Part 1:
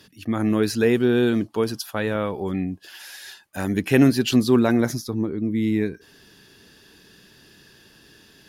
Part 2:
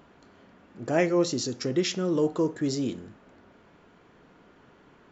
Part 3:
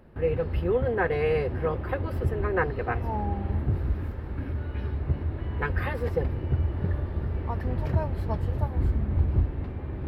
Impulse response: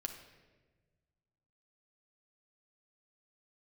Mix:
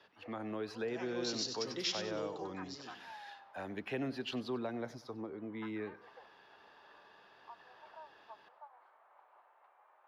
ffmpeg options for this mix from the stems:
-filter_complex "[0:a]equalizer=f=660:w=0.69:g=10.5,acrossover=split=200[a][b];[b]acompressor=threshold=-16dB:ratio=2[c];[a][c]amix=inputs=2:normalize=0,volume=-11dB,asplit=2[d][e];[e]volume=-18.5dB[f];[1:a]equalizer=f=5.3k:w=0.95:g=13.5,volume=-6dB,afade=t=in:st=1.04:d=0.27:silence=0.281838,afade=t=out:st=2.22:d=0.25:silence=0.375837,asplit=2[g][h];[h]volume=-7.5dB[i];[2:a]highpass=f=730:w=0.5412,highpass=f=730:w=1.3066,highshelf=f=1.5k:t=q:w=1.5:g=-6.5,volume=-13.5dB[j];[f][i]amix=inputs=2:normalize=0,aecho=0:1:95|190|285|380:1|0.31|0.0961|0.0298[k];[d][g][j][k]amix=inputs=4:normalize=0,acrossover=split=520 4000:gain=0.2 1 0.0631[l][m][n];[l][m][n]amix=inputs=3:normalize=0,acrossover=split=370|3000[o][p][q];[p]acompressor=threshold=-50dB:ratio=2[r];[o][r][q]amix=inputs=3:normalize=0"

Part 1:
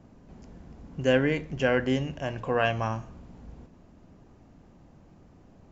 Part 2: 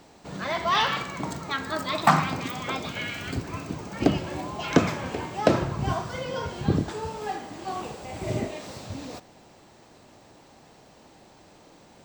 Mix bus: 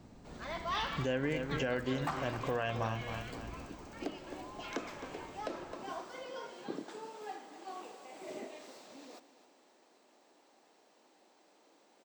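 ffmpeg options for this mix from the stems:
-filter_complex "[0:a]volume=-2.5dB,asplit=2[a][b];[b]volume=-12dB[c];[1:a]highpass=f=270:w=0.5412,highpass=f=270:w=1.3066,volume=-12.5dB,asplit=2[d][e];[e]volume=-14.5dB[f];[c][f]amix=inputs=2:normalize=0,aecho=0:1:263|526|789|1052|1315|1578:1|0.44|0.194|0.0852|0.0375|0.0165[g];[a][d][g]amix=inputs=3:normalize=0,alimiter=limit=-24dB:level=0:latency=1:release=273"

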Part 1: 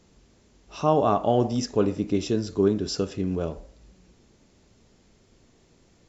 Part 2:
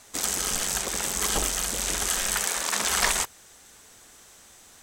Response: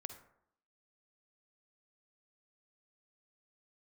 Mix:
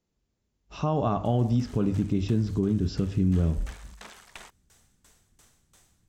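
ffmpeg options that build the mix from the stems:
-filter_complex "[0:a]agate=range=-21dB:threshold=-50dB:ratio=16:detection=peak,asubboost=boost=9.5:cutoff=190,volume=-0.5dB[a];[1:a]acompressor=threshold=-41dB:ratio=1.5,aeval=exprs='val(0)*pow(10,-25*if(lt(mod(2.9*n/s,1),2*abs(2.9)/1000),1-mod(2.9*n/s,1)/(2*abs(2.9)/1000),(mod(2.9*n/s,1)-2*abs(2.9)/1000)/(1-2*abs(2.9)/1000))/20)':c=same,adelay=1250,volume=-4.5dB[b];[a][b]amix=inputs=2:normalize=0,acrossover=split=4100[c][d];[d]acompressor=threshold=-52dB:ratio=4:attack=1:release=60[e];[c][e]amix=inputs=2:normalize=0,bandreject=f=50:t=h:w=6,bandreject=f=100:t=h:w=6,alimiter=limit=-16dB:level=0:latency=1:release=172"

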